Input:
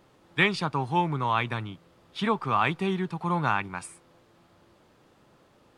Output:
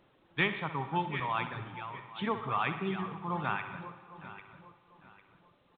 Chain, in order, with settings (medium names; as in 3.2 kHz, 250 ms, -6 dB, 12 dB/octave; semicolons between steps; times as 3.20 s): backward echo that repeats 400 ms, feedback 54%, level -9 dB; reverb removal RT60 1.5 s; feedback delay 62 ms, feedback 54%, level -12 dB; on a send at -12 dB: reverberation RT60 1.7 s, pre-delay 58 ms; on the sum: trim -6.5 dB; A-law 64 kbps 8 kHz